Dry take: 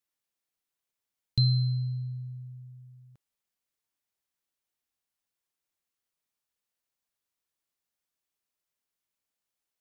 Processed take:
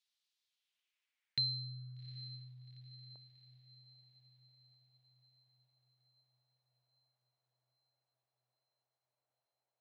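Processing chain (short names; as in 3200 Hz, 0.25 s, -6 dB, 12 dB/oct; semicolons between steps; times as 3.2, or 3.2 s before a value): band-pass sweep 3900 Hz -> 680 Hz, 0.4–2.81; diffused feedback echo 0.799 s, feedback 56%, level -15 dB; gain +10 dB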